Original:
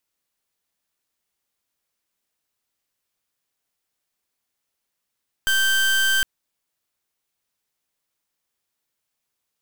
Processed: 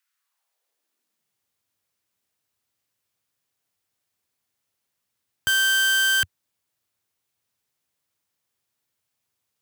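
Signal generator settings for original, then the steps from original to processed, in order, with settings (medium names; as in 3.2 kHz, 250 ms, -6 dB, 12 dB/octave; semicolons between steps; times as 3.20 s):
pulse 1.56 kHz, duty 29% -19 dBFS 0.76 s
high-pass sweep 1.5 kHz -> 92 Hz, 0.13–1.46 s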